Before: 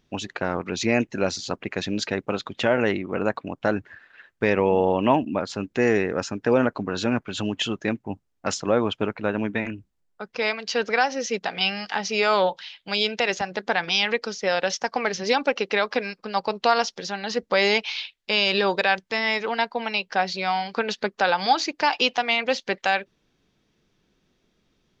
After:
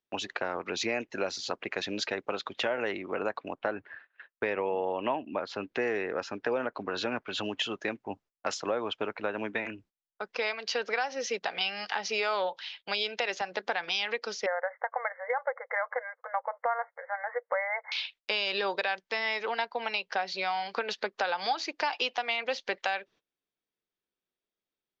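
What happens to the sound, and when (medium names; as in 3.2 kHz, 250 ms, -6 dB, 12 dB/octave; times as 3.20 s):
3.54–7.42 s: low-pass 2.9 kHz -> 6.2 kHz
14.46–17.92 s: brick-wall FIR band-pass 470–2200 Hz
whole clip: gate -48 dBFS, range -22 dB; three-band isolator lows -14 dB, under 350 Hz, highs -17 dB, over 6.7 kHz; compression 3:1, threshold -29 dBFS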